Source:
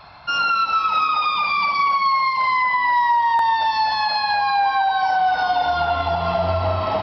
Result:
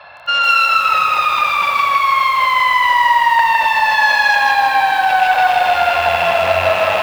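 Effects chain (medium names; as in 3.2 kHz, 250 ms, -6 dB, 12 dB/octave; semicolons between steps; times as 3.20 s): rattle on loud lows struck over -37 dBFS, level -17 dBFS; bass shelf 100 Hz +7 dB; band-stop 4.7 kHz, Q 7.9; small resonant body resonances 550/1700/2700 Hz, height 14 dB, ringing for 30 ms; on a send: echo that smears into a reverb 467 ms, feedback 60%, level -14 dB; on the sum: Chebyshev shaper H 5 -27 dB, 6 -17 dB, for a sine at -4 dBFS; high-pass 64 Hz 24 dB/octave; three-band isolator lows -13 dB, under 540 Hz, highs -23 dB, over 5.2 kHz; bit-crushed delay 158 ms, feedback 35%, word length 6-bit, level -3.5 dB; trim +1 dB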